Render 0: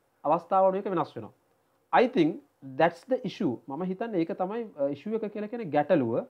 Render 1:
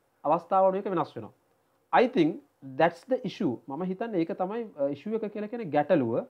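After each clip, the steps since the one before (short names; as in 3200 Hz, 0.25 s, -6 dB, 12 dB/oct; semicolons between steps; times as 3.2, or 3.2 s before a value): nothing audible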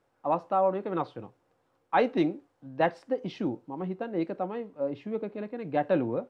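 air absorption 54 m; gain -2 dB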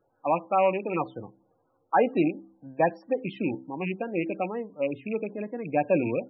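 rattling part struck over -36 dBFS, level -25 dBFS; de-hum 65.27 Hz, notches 5; loudest bins only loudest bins 32; gain +2.5 dB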